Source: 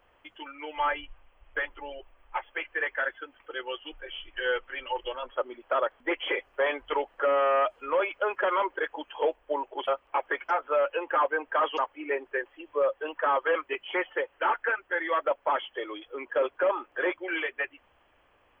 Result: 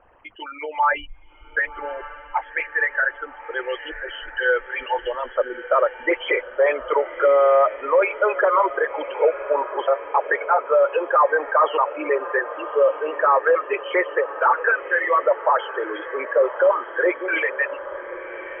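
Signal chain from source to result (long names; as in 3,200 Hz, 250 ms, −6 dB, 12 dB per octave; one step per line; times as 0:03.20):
spectral envelope exaggerated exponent 2
Butterworth low-pass 2,800 Hz 36 dB per octave
on a send: feedback delay with all-pass diffusion 1,138 ms, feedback 57%, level −13.5 dB
on the sum: level +8.5 dB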